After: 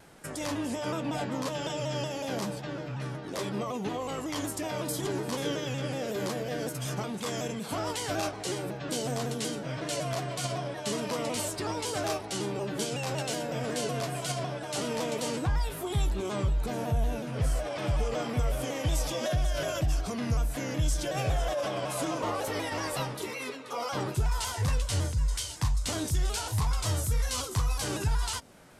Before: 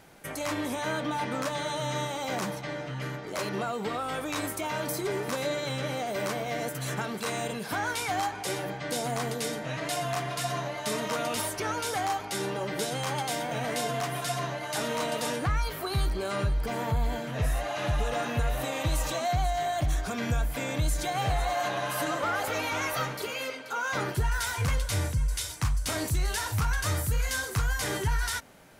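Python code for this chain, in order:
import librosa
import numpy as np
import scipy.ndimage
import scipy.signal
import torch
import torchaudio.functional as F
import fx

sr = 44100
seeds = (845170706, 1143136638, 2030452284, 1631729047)

y = fx.formant_shift(x, sr, semitones=-3)
y = fx.dynamic_eq(y, sr, hz=1600.0, q=0.92, threshold_db=-46.0, ratio=4.0, max_db=-6)
y = fx.vibrato_shape(y, sr, shape='saw_down', rate_hz=5.4, depth_cents=100.0)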